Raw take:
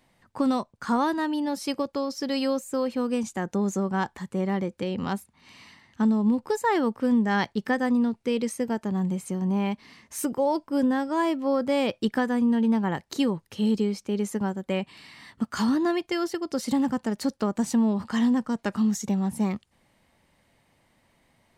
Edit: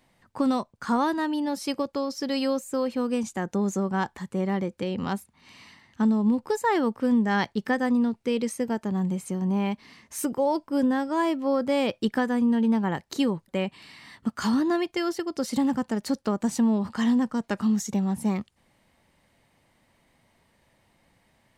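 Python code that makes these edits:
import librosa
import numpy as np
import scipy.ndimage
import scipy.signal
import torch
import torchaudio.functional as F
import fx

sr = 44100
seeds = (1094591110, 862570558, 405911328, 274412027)

y = fx.edit(x, sr, fx.cut(start_s=13.48, length_s=1.15), tone=tone)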